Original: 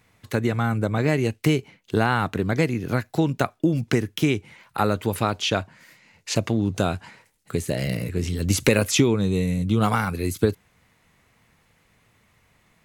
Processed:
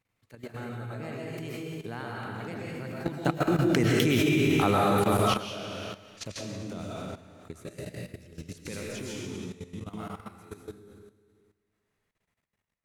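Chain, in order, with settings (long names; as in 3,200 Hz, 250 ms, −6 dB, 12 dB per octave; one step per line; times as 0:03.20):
source passing by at 0:04.16, 15 m/s, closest 4.8 metres
comb and all-pass reverb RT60 1.7 s, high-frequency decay 1×, pre-delay 85 ms, DRR −4.5 dB
output level in coarse steps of 14 dB
level +5 dB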